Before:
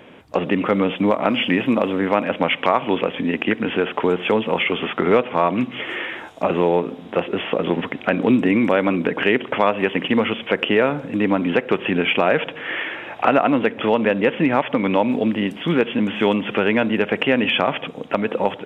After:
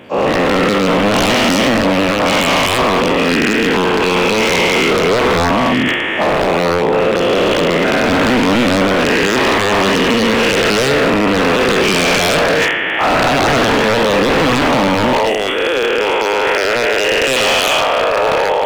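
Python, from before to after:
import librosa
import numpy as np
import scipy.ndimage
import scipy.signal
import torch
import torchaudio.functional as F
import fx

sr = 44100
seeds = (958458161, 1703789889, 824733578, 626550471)

y = fx.spec_dilate(x, sr, span_ms=480)
y = fx.recorder_agc(y, sr, target_db=-2.5, rise_db_per_s=6.6, max_gain_db=30)
y = fx.highpass(y, sr, hz=fx.steps((0.0, 62.0), (15.13, 420.0)), slope=24)
y = fx.transient(y, sr, attack_db=-3, sustain_db=11)
y = 10.0 ** (-7.5 / 20.0) * (np.abs((y / 10.0 ** (-7.5 / 20.0) + 3.0) % 4.0 - 2.0) - 1.0)
y = fx.echo_filtered(y, sr, ms=123, feedback_pct=74, hz=2000.0, wet_db=-18.0)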